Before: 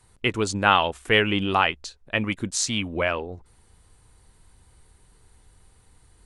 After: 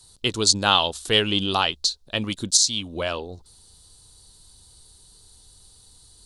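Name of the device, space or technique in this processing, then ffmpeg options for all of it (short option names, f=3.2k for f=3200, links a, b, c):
over-bright horn tweeter: -af "highshelf=f=3k:t=q:w=3:g=11,alimiter=limit=-0.5dB:level=0:latency=1:release=480,volume=-1dB"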